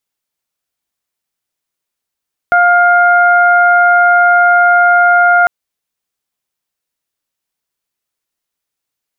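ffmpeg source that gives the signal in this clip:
ffmpeg -f lavfi -i "aevalsrc='0.355*sin(2*PI*705*t)+0.422*sin(2*PI*1410*t)+0.0501*sin(2*PI*2115*t)':duration=2.95:sample_rate=44100" out.wav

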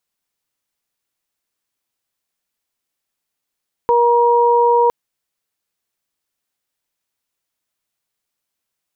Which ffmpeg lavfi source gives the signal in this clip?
ffmpeg -f lavfi -i "aevalsrc='0.224*sin(2*PI*475*t)+0.237*sin(2*PI*950*t)':duration=1.01:sample_rate=44100" out.wav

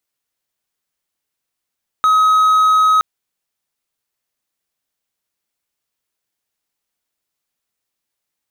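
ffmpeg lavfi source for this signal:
ffmpeg -f lavfi -i "aevalsrc='0.447*(1-4*abs(mod(1270*t+0.25,1)-0.5))':duration=0.97:sample_rate=44100" out.wav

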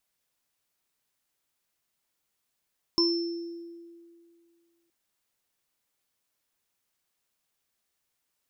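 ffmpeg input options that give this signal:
ffmpeg -f lavfi -i "aevalsrc='0.0794*pow(10,-3*t/2.25)*sin(2*PI*339*t)+0.0316*pow(10,-3*t/0.23)*sin(2*PI*1020*t)+0.0944*pow(10,-3*t/0.86)*sin(2*PI*5340*t)':duration=1.92:sample_rate=44100" out.wav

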